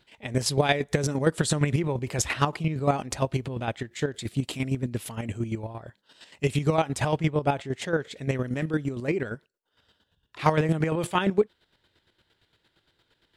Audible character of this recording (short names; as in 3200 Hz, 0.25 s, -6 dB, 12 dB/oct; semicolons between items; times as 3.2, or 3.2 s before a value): chopped level 8.7 Hz, depth 60%, duty 30%